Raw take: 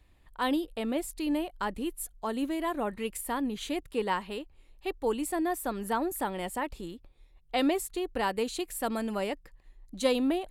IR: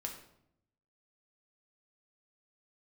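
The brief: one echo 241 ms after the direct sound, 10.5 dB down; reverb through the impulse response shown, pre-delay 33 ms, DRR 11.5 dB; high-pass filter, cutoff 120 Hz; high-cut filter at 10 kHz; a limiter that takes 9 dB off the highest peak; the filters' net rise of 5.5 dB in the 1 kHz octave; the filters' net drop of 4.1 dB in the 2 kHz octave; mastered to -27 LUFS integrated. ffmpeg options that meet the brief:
-filter_complex "[0:a]highpass=120,lowpass=10000,equalizer=f=1000:t=o:g=8.5,equalizer=f=2000:t=o:g=-8.5,alimiter=limit=0.0841:level=0:latency=1,aecho=1:1:241:0.299,asplit=2[s0][s1];[1:a]atrim=start_sample=2205,adelay=33[s2];[s1][s2]afir=irnorm=-1:irlink=0,volume=0.299[s3];[s0][s3]amix=inputs=2:normalize=0,volume=1.78"

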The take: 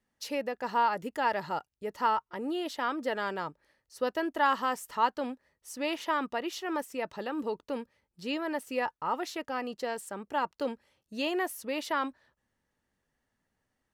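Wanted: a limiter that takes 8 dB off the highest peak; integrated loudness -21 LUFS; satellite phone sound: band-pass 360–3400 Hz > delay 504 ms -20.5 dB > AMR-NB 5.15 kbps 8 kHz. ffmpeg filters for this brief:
-af "alimiter=limit=0.0841:level=0:latency=1,highpass=360,lowpass=3400,aecho=1:1:504:0.0944,volume=5.62" -ar 8000 -c:a libopencore_amrnb -b:a 5150

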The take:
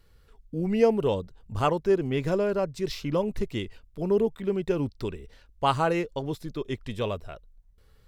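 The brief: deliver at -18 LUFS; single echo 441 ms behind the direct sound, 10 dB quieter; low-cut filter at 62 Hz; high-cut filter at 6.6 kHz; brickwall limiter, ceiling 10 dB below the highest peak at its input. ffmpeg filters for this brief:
-af "highpass=62,lowpass=6600,alimiter=limit=0.112:level=0:latency=1,aecho=1:1:441:0.316,volume=3.98"

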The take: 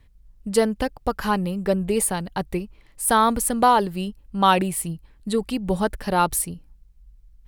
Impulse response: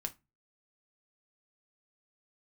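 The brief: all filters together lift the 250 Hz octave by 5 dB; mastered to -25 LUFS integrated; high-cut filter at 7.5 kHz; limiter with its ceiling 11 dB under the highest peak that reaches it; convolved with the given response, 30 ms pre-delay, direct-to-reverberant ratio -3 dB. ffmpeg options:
-filter_complex "[0:a]lowpass=7500,equalizer=f=250:t=o:g=6.5,alimiter=limit=0.188:level=0:latency=1,asplit=2[s0][s1];[1:a]atrim=start_sample=2205,adelay=30[s2];[s1][s2]afir=irnorm=-1:irlink=0,volume=1.58[s3];[s0][s3]amix=inputs=2:normalize=0,volume=0.596"

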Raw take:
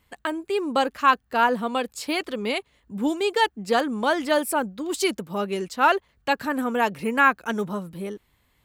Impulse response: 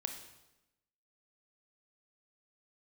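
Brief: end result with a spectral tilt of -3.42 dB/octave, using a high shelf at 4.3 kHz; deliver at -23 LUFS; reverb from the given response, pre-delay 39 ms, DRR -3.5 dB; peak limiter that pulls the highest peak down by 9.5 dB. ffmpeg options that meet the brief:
-filter_complex "[0:a]highshelf=f=4300:g=4,alimiter=limit=0.2:level=0:latency=1,asplit=2[s0][s1];[1:a]atrim=start_sample=2205,adelay=39[s2];[s1][s2]afir=irnorm=-1:irlink=0,volume=1.58[s3];[s0][s3]amix=inputs=2:normalize=0,volume=0.794"

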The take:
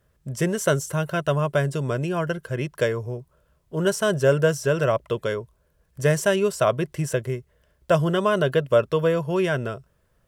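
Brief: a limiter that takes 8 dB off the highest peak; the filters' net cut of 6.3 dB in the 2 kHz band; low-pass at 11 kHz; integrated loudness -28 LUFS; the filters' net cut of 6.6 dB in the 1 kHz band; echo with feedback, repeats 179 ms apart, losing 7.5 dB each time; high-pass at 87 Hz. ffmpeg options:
-af "highpass=87,lowpass=11000,equalizer=f=1000:t=o:g=-7.5,equalizer=f=2000:t=o:g=-5.5,alimiter=limit=0.141:level=0:latency=1,aecho=1:1:179|358|537|716|895:0.422|0.177|0.0744|0.0312|0.0131,volume=0.891"

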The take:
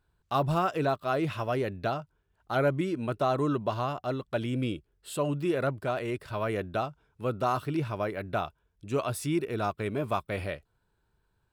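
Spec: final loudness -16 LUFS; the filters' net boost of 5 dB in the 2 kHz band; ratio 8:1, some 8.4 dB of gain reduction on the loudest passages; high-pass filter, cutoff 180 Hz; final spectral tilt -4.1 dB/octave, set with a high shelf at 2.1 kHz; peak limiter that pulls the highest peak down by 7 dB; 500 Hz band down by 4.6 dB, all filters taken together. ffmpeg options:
-af "highpass=180,equalizer=f=500:t=o:g=-7,equalizer=f=2000:t=o:g=4,highshelf=f=2100:g=6,acompressor=threshold=0.0282:ratio=8,volume=12.6,alimiter=limit=0.75:level=0:latency=1"

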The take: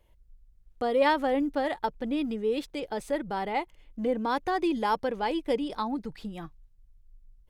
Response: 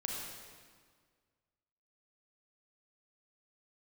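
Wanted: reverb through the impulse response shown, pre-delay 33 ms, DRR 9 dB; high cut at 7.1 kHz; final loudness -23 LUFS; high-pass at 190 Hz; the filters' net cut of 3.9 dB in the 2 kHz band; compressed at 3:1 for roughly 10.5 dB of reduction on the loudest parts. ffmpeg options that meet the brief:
-filter_complex "[0:a]highpass=190,lowpass=7100,equalizer=f=2000:t=o:g=-5,acompressor=threshold=0.02:ratio=3,asplit=2[s0][s1];[1:a]atrim=start_sample=2205,adelay=33[s2];[s1][s2]afir=irnorm=-1:irlink=0,volume=0.282[s3];[s0][s3]amix=inputs=2:normalize=0,volume=4.73"

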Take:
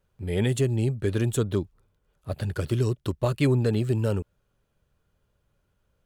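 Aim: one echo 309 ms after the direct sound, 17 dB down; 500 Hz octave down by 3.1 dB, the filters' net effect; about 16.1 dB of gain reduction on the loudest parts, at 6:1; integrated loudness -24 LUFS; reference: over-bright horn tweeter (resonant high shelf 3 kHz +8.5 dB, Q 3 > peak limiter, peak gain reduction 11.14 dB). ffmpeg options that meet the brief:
-af "equalizer=f=500:t=o:g=-4,acompressor=threshold=0.0126:ratio=6,highshelf=f=3000:t=q:w=3:g=8.5,aecho=1:1:309:0.141,volume=7.94,alimiter=limit=0.224:level=0:latency=1"

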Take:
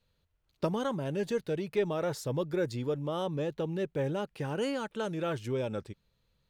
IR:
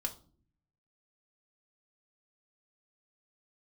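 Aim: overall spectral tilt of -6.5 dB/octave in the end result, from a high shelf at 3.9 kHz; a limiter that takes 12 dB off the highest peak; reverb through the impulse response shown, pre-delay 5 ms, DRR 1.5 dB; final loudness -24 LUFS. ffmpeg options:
-filter_complex "[0:a]highshelf=f=3900:g=-7,alimiter=level_in=1.78:limit=0.0631:level=0:latency=1,volume=0.562,asplit=2[s0][s1];[1:a]atrim=start_sample=2205,adelay=5[s2];[s1][s2]afir=irnorm=-1:irlink=0,volume=0.75[s3];[s0][s3]amix=inputs=2:normalize=0,volume=3.55"

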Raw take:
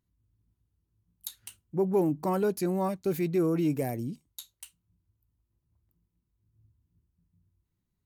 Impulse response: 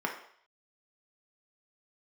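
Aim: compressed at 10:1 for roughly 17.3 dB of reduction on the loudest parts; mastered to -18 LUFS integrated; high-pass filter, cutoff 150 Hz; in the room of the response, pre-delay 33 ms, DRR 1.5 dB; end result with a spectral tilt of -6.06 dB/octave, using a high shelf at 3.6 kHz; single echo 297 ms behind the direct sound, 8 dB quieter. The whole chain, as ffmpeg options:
-filter_complex "[0:a]highpass=150,highshelf=f=3600:g=-6.5,acompressor=threshold=0.01:ratio=10,aecho=1:1:297:0.398,asplit=2[s0][s1];[1:a]atrim=start_sample=2205,adelay=33[s2];[s1][s2]afir=irnorm=-1:irlink=0,volume=0.355[s3];[s0][s3]amix=inputs=2:normalize=0,volume=16.8"

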